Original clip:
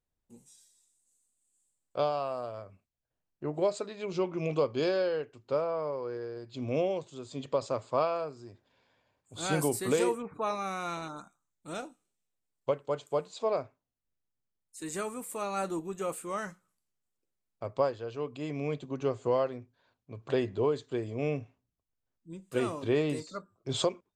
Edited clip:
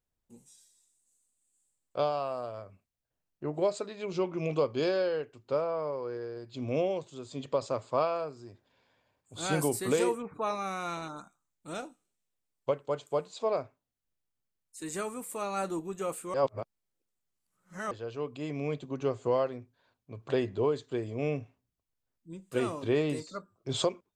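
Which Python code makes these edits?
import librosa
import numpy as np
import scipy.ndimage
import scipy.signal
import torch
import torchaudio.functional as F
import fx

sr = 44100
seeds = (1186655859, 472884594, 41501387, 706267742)

y = fx.edit(x, sr, fx.reverse_span(start_s=16.34, length_s=1.57), tone=tone)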